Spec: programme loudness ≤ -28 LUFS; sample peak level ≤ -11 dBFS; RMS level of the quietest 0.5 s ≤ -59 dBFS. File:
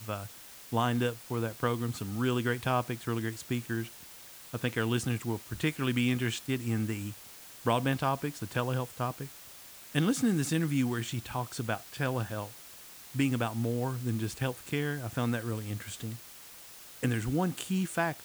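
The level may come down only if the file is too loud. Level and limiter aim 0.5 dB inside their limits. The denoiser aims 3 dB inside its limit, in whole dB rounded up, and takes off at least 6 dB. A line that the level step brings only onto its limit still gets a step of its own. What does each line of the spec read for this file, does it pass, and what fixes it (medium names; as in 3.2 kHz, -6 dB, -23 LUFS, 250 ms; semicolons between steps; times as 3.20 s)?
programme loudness -32.5 LUFS: pass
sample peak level -13.0 dBFS: pass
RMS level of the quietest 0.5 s -50 dBFS: fail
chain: noise reduction 12 dB, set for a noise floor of -50 dBFS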